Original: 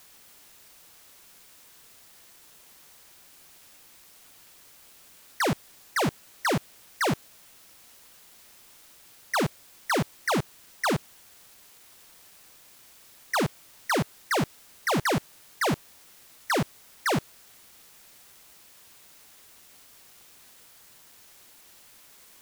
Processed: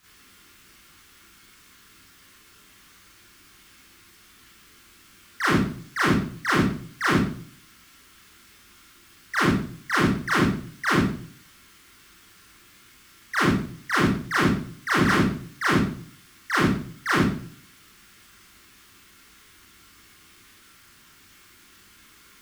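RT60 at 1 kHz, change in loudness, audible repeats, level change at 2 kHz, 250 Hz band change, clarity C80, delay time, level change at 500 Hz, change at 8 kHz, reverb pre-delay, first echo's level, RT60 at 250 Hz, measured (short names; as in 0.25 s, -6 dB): 0.50 s, +5.0 dB, none, +7.0 dB, +8.5 dB, 6.5 dB, none, +0.5 dB, -1.0 dB, 28 ms, none, 0.60 s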